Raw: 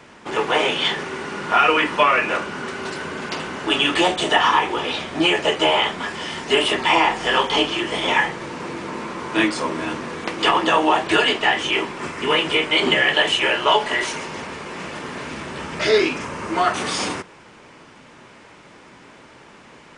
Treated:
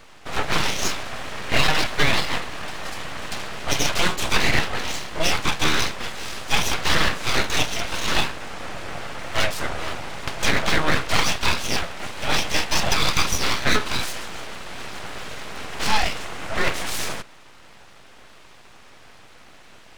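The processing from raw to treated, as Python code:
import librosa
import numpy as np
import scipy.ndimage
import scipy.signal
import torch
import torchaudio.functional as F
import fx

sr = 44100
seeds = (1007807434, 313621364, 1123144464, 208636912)

y = np.abs(x)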